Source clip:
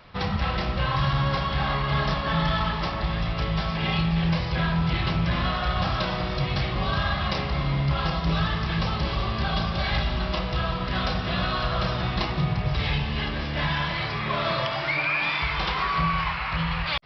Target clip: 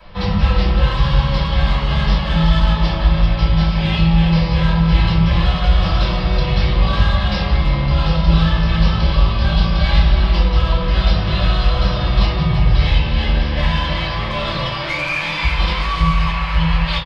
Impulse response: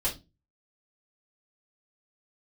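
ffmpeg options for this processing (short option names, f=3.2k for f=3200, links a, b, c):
-filter_complex "[0:a]acrossover=split=240|2400[a][b][c];[b]asoftclip=type=tanh:threshold=-30dB[d];[a][d][c]amix=inputs=3:normalize=0,asplit=2[e][f];[f]adelay=330,highpass=300,lowpass=3.4k,asoftclip=type=hard:threshold=-23dB,volume=-7dB[g];[e][g]amix=inputs=2:normalize=0[h];[1:a]atrim=start_sample=2205[i];[h][i]afir=irnorm=-1:irlink=0"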